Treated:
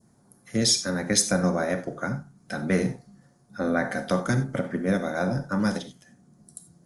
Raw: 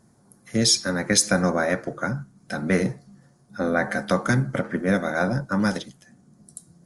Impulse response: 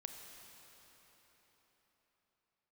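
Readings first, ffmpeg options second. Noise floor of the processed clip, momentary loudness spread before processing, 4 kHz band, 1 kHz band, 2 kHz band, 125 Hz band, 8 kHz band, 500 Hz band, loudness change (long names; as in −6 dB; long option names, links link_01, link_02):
−61 dBFS, 14 LU, −2.5 dB, −3.5 dB, −5.0 dB, −2.0 dB, −2.0 dB, −2.5 dB, −2.5 dB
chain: -filter_complex "[0:a]adynamicequalizer=threshold=0.0112:dfrequency=1700:dqfactor=0.93:tfrequency=1700:tqfactor=0.93:attack=5:release=100:ratio=0.375:range=2.5:mode=cutabove:tftype=bell[link_01];[1:a]atrim=start_sample=2205,atrim=end_sample=4410[link_02];[link_01][link_02]afir=irnorm=-1:irlink=0,volume=2.5dB"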